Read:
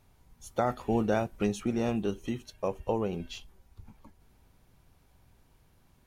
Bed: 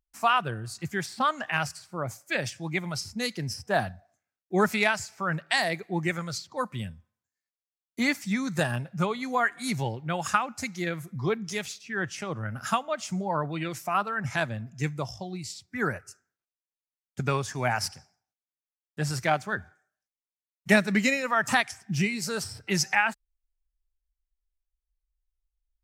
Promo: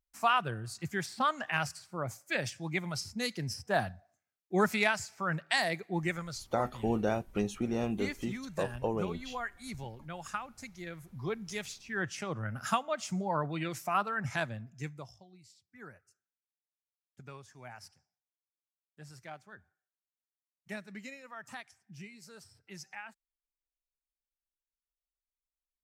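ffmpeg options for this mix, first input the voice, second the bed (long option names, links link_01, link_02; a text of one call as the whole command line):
ffmpeg -i stem1.wav -i stem2.wav -filter_complex "[0:a]adelay=5950,volume=-3dB[link_01];[1:a]volume=5.5dB,afade=type=out:start_time=5.99:duration=0.69:silence=0.354813,afade=type=in:start_time=10.86:duration=1.22:silence=0.334965,afade=type=out:start_time=14.14:duration=1.12:silence=0.125893[link_02];[link_01][link_02]amix=inputs=2:normalize=0" out.wav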